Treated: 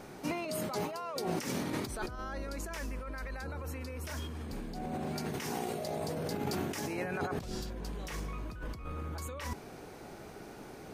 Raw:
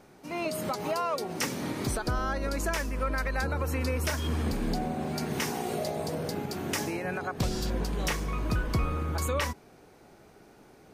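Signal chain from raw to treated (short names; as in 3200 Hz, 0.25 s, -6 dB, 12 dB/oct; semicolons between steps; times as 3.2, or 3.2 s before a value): negative-ratio compressor -38 dBFS, ratio -1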